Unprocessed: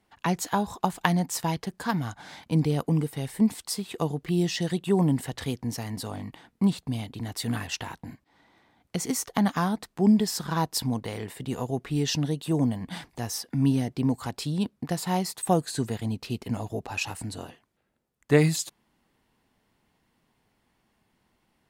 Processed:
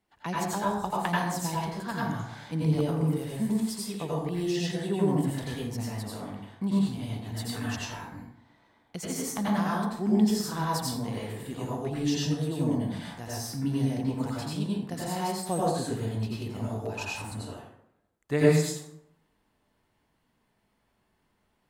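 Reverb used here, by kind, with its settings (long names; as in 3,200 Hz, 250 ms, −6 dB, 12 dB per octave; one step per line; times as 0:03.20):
dense smooth reverb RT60 0.77 s, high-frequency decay 0.55×, pre-delay 75 ms, DRR −6 dB
level −8.5 dB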